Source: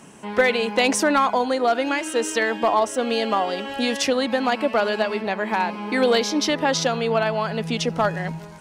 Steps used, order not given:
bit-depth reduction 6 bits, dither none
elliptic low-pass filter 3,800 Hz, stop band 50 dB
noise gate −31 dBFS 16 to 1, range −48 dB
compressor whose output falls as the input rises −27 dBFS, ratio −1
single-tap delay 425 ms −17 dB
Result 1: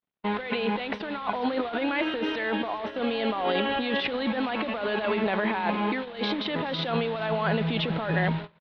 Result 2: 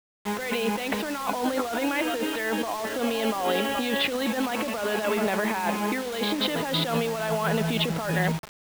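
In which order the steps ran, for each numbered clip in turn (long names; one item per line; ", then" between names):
compressor whose output falls as the input rises, then single-tap delay, then bit-depth reduction, then elliptic low-pass filter, then noise gate
single-tap delay, then noise gate, then elliptic low-pass filter, then compressor whose output falls as the input rises, then bit-depth reduction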